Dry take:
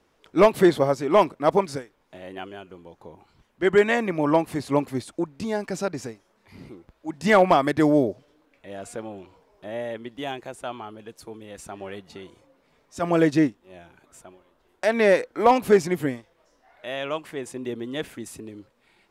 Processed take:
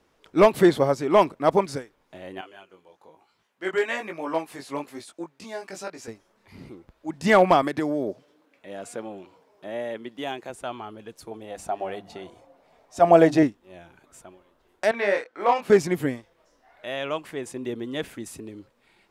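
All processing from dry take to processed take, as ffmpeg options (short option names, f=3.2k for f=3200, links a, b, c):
-filter_complex "[0:a]asettb=1/sr,asplit=3[a][b][c];[a]atrim=end=2.414[d];[b]atrim=start=2.41:end=6.08,asetpts=PTS-STARTPTS,afade=t=in:d=0.004:c=qsin,afade=t=out:st=3.666:d=0.004:c=qsin,highpass=f=730:p=1,flanger=delay=17.5:depth=4.4:speed=1.1[e];[c]atrim=start=6.076[f];[d][e]acrossfade=d=0.004:c1=hsin:c2=qsin[g];[g][f]acrossfade=d=0.004:c1=qsin:c2=hsin,asettb=1/sr,asplit=3[h][i][j];[h]atrim=end=7.624[k];[i]atrim=start=7.62:end=10.5,asetpts=PTS-STARTPTS,afade=t=in:d=0.004:c=qsin,afade=t=out:st=2.876:d=0.004:c=qsin,highpass=160,acompressor=threshold=-21dB:ratio=10:attack=3.2:release=140:knee=1:detection=peak[l];[j]atrim=start=10.496[m];[k][l]acrossfade=d=0.004:c1=hsin:c2=qsin[n];[n][m]acrossfade=d=0.004:c1=qsin:c2=hsin,asettb=1/sr,asplit=3[o][p][q];[o]atrim=end=11.314[r];[p]atrim=start=11.31:end=13.43,asetpts=PTS-STARTPTS,afade=t=in:d=0.004:c=qsin,afade=t=out:st=2.116:d=0.004:c=qsin,equalizer=f=710:w=2.4:g=13.5,bandreject=f=50:t=h:w=6,bandreject=f=100:t=h:w=6,bandreject=f=150:t=h:w=6,bandreject=f=200:t=h:w=6,bandreject=f=250:t=h:w=6,bandreject=f=300:t=h:w=6[s];[q]atrim=start=13.426[t];[r][s]acrossfade=d=0.004:c1=hsin:c2=qsin[u];[u][t]acrossfade=d=0.004:c1=qsin:c2=hsin,asettb=1/sr,asplit=3[v][w][x];[v]atrim=end=14.914[y];[w]atrim=start=14.91:end=15.7,asetpts=PTS-STARTPTS,afade=t=in:d=0.004:c=qsin,afade=t=out:st=0.786:d=0.004:c=qsin,highpass=f=1.1k:p=1,aemphasis=mode=reproduction:type=75kf,asplit=2[z][aa];[aa]adelay=25,volume=-3dB[ab];[z][ab]amix=inputs=2:normalize=0,atrim=end_sample=34839[ac];[x]atrim=start=15.696[ad];[y][ac]acrossfade=d=0.004:c1=hsin:c2=qsin[ae];[ae][ad]acrossfade=d=0.004:c1=qsin:c2=hsin"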